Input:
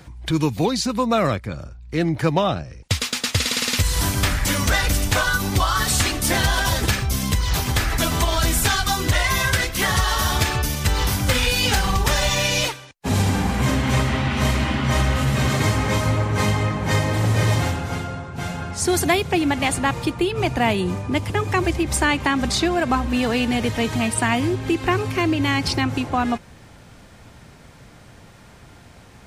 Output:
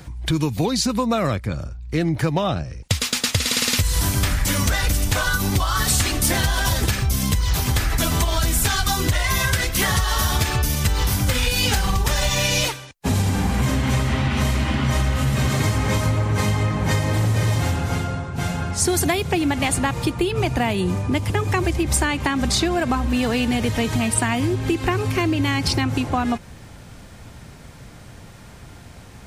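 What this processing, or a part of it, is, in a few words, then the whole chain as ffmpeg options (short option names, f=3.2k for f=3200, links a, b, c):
ASMR close-microphone chain: -af "lowshelf=f=180:g=5,acompressor=threshold=-18dB:ratio=6,highshelf=f=6.3k:g=5,volume=1.5dB"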